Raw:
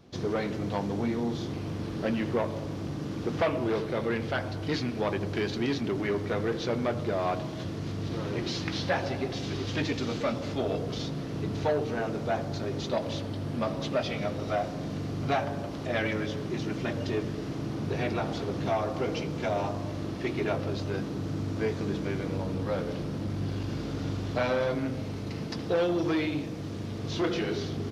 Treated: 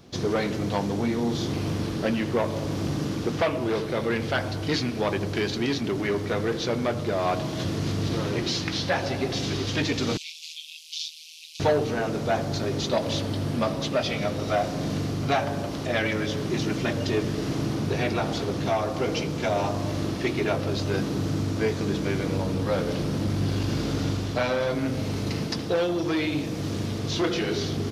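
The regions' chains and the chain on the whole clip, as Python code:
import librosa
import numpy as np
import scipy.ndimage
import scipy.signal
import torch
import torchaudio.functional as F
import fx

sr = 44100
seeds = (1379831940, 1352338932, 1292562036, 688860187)

y = fx.chain(x, sr, fx.steep_highpass(hz=2400.0, slope=96),
    fx.ring_mod(carrier_hz=79.0), at=(10.17, 11.6))
y = fx.high_shelf(y, sr, hz=3900.0, db=7.5)
y = fx.rider(y, sr, range_db=3, speed_s=0.5)
y = F.gain(torch.from_numpy(y), 4.0).numpy()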